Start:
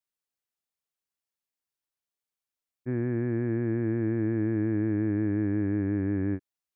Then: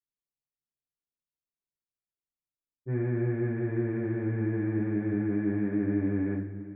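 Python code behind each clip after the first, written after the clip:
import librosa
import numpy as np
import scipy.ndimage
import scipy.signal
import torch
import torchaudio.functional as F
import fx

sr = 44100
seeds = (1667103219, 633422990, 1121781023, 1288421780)

y = fx.env_lowpass(x, sr, base_hz=360.0, full_db=-26.0)
y = fx.rev_double_slope(y, sr, seeds[0], early_s=0.38, late_s=3.4, knee_db=-19, drr_db=-7.5)
y = F.gain(torch.from_numpy(y), -8.0).numpy()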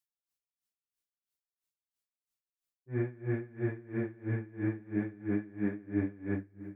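y = fx.high_shelf(x, sr, hz=2200.0, db=8.5)
y = y * 10.0 ** (-25 * (0.5 - 0.5 * np.cos(2.0 * np.pi * 3.0 * np.arange(len(y)) / sr)) / 20.0)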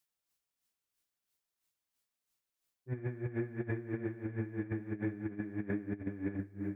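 y = fx.over_compress(x, sr, threshold_db=-37.0, ratio=-0.5)
y = F.gain(torch.from_numpy(y), 1.5).numpy()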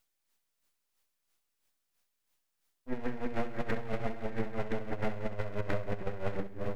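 y = np.abs(x)
y = fx.echo_feedback(y, sr, ms=66, feedback_pct=38, wet_db=-14.0)
y = F.gain(torch.from_numpy(y), 6.0).numpy()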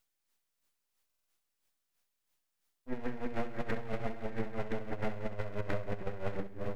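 y = fx.buffer_glitch(x, sr, at_s=(1.05,), block=2048, repeats=4)
y = F.gain(torch.from_numpy(y), -2.0).numpy()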